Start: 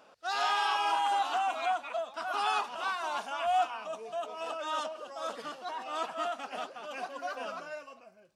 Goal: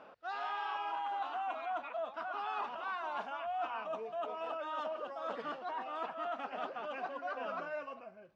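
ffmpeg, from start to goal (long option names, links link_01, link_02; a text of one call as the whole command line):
ffmpeg -i in.wav -af "lowpass=2300,areverse,acompressor=threshold=-41dB:ratio=6,areverse,volume=4.5dB" out.wav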